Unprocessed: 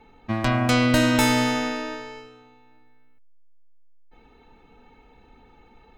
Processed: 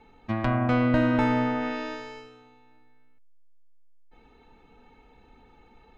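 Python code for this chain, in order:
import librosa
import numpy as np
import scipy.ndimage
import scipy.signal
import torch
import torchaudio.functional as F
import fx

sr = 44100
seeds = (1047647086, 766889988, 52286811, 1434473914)

y = fx.env_lowpass_down(x, sr, base_hz=1600.0, full_db=-19.5)
y = y * librosa.db_to_amplitude(-2.5)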